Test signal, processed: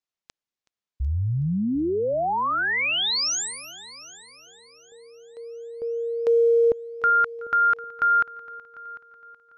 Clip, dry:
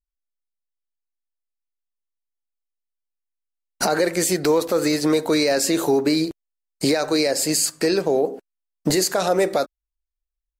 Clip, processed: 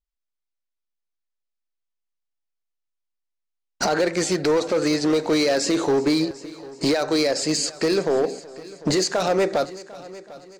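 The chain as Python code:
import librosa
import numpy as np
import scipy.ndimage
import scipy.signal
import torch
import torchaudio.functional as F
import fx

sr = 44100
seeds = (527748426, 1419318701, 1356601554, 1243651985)

y = scipy.signal.sosfilt(scipy.signal.butter(4, 6800.0, 'lowpass', fs=sr, output='sos'), x)
y = np.clip(y, -10.0 ** (-15.0 / 20.0), 10.0 ** (-15.0 / 20.0))
y = fx.echo_heads(y, sr, ms=374, heads='first and second', feedback_pct=41, wet_db=-21)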